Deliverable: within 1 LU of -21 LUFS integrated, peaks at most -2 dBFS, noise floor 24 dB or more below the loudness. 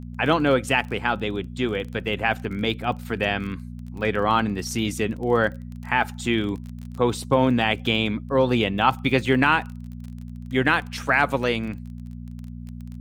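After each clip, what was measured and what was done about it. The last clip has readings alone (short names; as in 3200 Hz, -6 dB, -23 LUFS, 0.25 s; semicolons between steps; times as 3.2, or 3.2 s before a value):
ticks 23/s; hum 60 Hz; harmonics up to 240 Hz; hum level -33 dBFS; loudness -23.0 LUFS; peak -5.0 dBFS; loudness target -21.0 LUFS
-> de-click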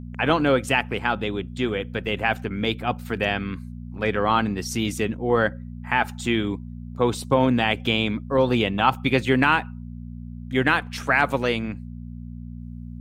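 ticks 0/s; hum 60 Hz; harmonics up to 240 Hz; hum level -34 dBFS
-> de-hum 60 Hz, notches 4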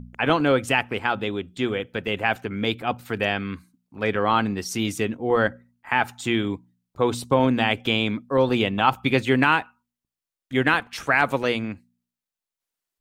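hum none; loudness -23.0 LUFS; peak -5.0 dBFS; loudness target -21.0 LUFS
-> gain +2 dB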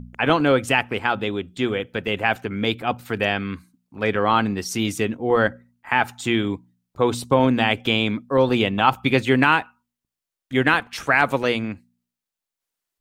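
loudness -21.0 LUFS; peak -3.0 dBFS; noise floor -87 dBFS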